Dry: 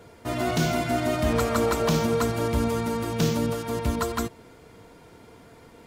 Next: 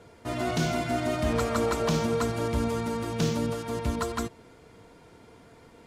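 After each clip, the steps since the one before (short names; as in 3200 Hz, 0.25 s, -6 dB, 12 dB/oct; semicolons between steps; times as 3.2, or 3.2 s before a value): LPF 11000 Hz 12 dB/oct; gain -3 dB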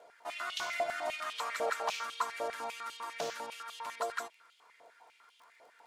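crackle 15/s -44 dBFS; stepped high-pass 10 Hz 650–3100 Hz; gain -8 dB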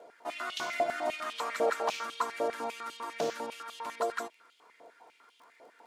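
bell 280 Hz +12 dB 1.9 oct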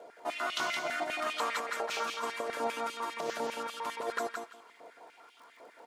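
negative-ratio compressor -33 dBFS, ratio -0.5; on a send: feedback echo 0.169 s, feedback 19%, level -5 dB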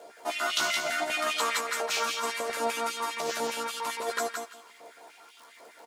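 high shelf 3400 Hz +12 dB; doubler 13 ms -5 dB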